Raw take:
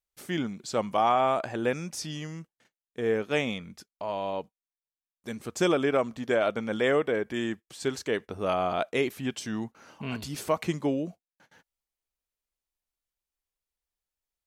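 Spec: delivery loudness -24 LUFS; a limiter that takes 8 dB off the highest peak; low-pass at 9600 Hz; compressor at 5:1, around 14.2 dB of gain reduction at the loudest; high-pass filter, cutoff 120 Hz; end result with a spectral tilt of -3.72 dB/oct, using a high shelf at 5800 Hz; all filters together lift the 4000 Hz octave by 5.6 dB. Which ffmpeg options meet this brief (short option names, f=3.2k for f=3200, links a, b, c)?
-af "highpass=120,lowpass=9.6k,equalizer=f=4k:t=o:g=6,highshelf=f=5.8k:g=4.5,acompressor=threshold=-36dB:ratio=5,volume=17.5dB,alimiter=limit=-12.5dB:level=0:latency=1"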